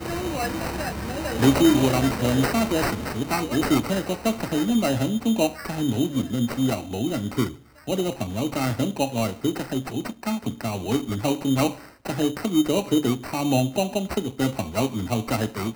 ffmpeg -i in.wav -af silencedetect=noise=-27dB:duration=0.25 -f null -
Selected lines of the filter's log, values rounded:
silence_start: 7.49
silence_end: 7.88 | silence_duration: 0.39
silence_start: 11.71
silence_end: 12.06 | silence_duration: 0.35